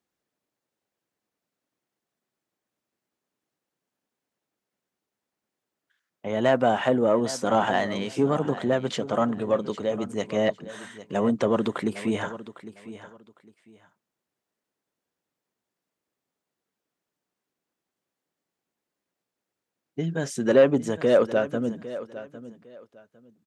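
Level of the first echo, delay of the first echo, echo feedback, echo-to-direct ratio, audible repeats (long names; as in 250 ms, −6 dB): −15.0 dB, 805 ms, 23%, −15.0 dB, 2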